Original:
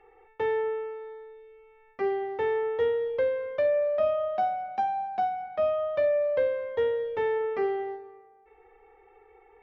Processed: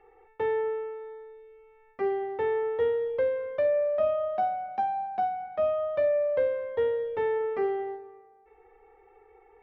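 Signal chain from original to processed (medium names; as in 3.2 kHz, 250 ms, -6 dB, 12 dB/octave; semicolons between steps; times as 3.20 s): treble shelf 2.9 kHz -8.5 dB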